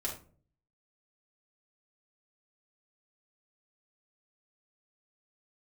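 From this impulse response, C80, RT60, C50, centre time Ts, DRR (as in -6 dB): 13.0 dB, 0.45 s, 7.0 dB, 23 ms, -4.5 dB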